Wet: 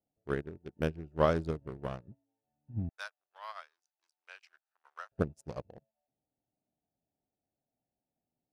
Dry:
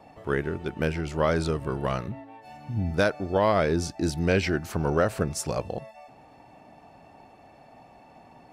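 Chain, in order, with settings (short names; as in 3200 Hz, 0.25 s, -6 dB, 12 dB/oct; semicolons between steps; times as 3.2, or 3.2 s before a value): Wiener smoothing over 41 samples; 2.89–5.12 HPF 1000 Hz 24 dB/oct; dynamic EQ 2100 Hz, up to -5 dB, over -46 dBFS, Q 2.5; upward expander 2.5:1, over -44 dBFS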